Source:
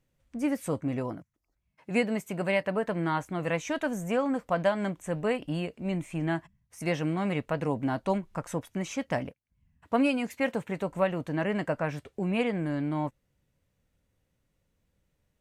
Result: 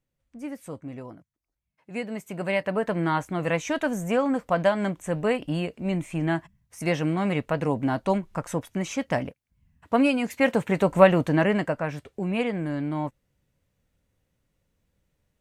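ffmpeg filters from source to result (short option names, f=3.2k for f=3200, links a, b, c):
-af "volume=11.5dB,afade=t=in:st=1.93:d=0.99:silence=0.281838,afade=t=in:st=10.19:d=0.9:silence=0.421697,afade=t=out:st=11.09:d=0.66:silence=0.316228"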